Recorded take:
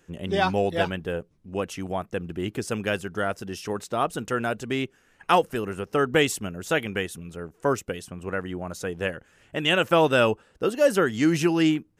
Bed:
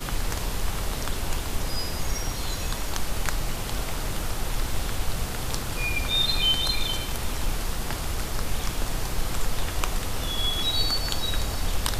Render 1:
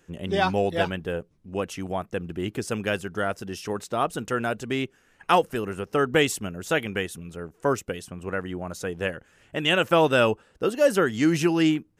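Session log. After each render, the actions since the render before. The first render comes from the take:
no processing that can be heard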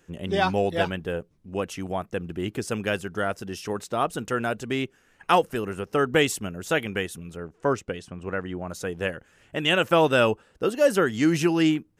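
0:07.37–0:08.69: high-frequency loss of the air 65 metres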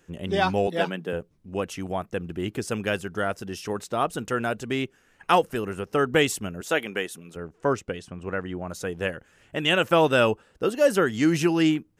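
0:00.67–0:01.13: elliptic high-pass filter 160 Hz
0:06.61–0:07.36: high-pass filter 240 Hz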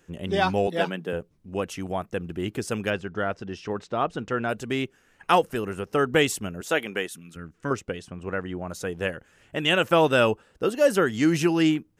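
0:02.90–0:04.49: high-frequency loss of the air 140 metres
0:07.08–0:07.71: flat-topped bell 610 Hz −11.5 dB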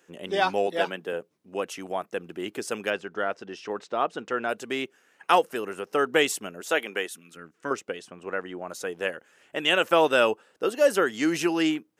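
high-pass filter 330 Hz 12 dB per octave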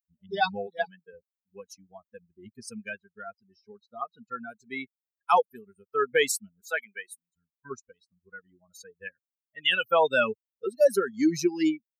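spectral dynamics exaggerated over time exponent 3
in parallel at −0.5 dB: brickwall limiter −22 dBFS, peak gain reduction 10.5 dB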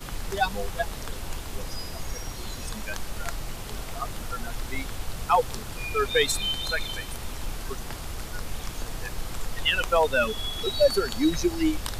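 mix in bed −6 dB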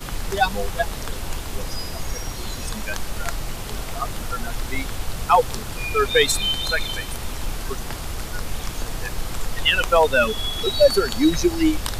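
level +5.5 dB

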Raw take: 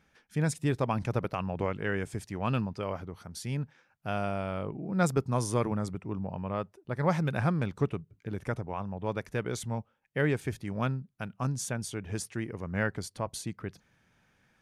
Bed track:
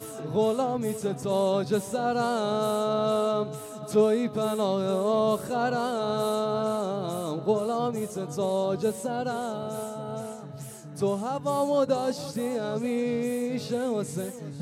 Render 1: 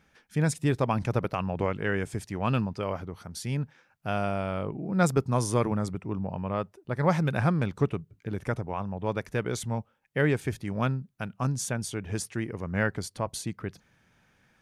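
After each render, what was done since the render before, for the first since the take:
level +3 dB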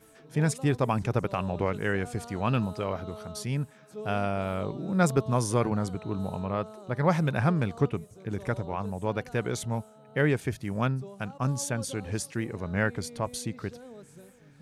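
mix in bed track −18.5 dB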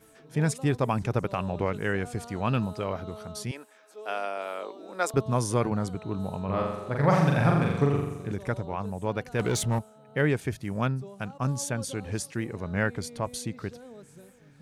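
0:03.51–0:05.14: Bessel high-pass filter 490 Hz, order 6
0:06.44–0:08.32: flutter between parallel walls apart 7.3 metres, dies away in 0.93 s
0:09.39–0:09.79: leveller curve on the samples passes 2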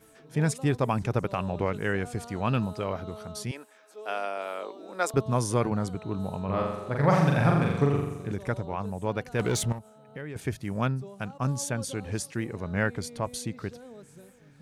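0:09.72–0:10.36: downward compressor 4 to 1, threshold −37 dBFS

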